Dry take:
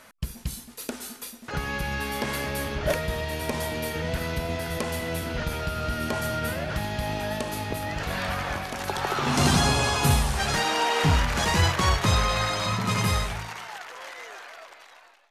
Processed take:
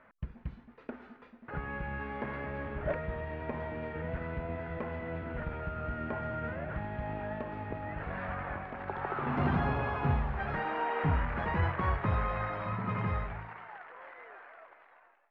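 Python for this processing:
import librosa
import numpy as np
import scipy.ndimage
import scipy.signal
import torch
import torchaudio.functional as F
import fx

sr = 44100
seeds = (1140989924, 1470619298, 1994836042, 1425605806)

y = scipy.signal.sosfilt(scipy.signal.butter(4, 2000.0, 'lowpass', fs=sr, output='sos'), x)
y = F.gain(torch.from_numpy(y), -7.5).numpy()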